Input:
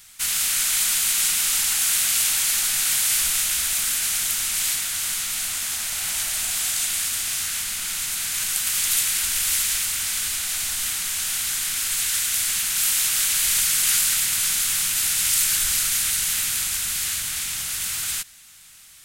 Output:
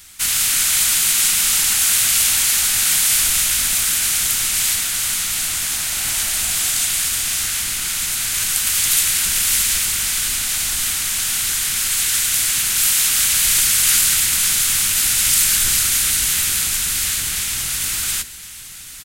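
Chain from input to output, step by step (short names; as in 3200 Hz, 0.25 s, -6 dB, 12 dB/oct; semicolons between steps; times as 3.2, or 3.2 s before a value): octaver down 1 oct, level +4 dB; on a send: feedback echo 1.062 s, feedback 45%, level -16.5 dB; on the sum: gain +5 dB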